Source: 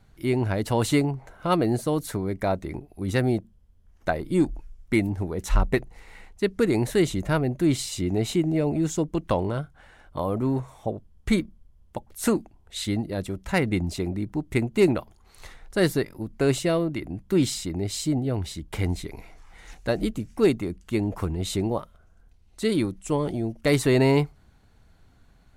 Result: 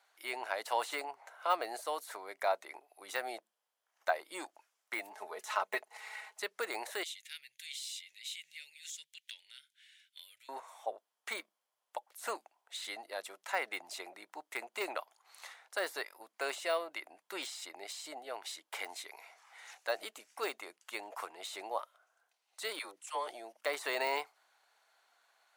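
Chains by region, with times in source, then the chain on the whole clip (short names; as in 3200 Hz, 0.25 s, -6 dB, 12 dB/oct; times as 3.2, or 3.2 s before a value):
5.11–6.44 comb 4.7 ms, depth 62% + upward compressor, threshold -30 dBFS
7.03–10.49 inverse Chebyshev band-stop 200–1200 Hz + bell 3500 Hz +6.5 dB 0.41 oct + compressor 2:1, threshold -39 dBFS
22.79–23.27 low shelf 250 Hz -11.5 dB + dispersion lows, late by 63 ms, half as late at 600 Hz
whole clip: de-esser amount 85%; HPF 670 Hz 24 dB/oct; gain -2.5 dB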